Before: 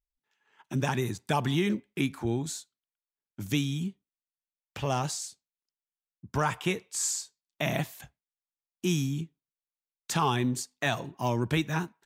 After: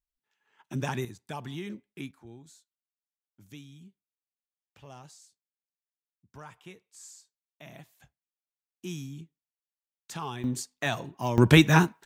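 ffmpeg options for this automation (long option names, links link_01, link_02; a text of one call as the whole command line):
ffmpeg -i in.wav -af "asetnsamples=nb_out_samples=441:pad=0,asendcmd='1.05 volume volume -11dB;2.11 volume volume -19dB;8.01 volume volume -10dB;10.44 volume volume -1dB;11.38 volume volume 10.5dB',volume=-3dB" out.wav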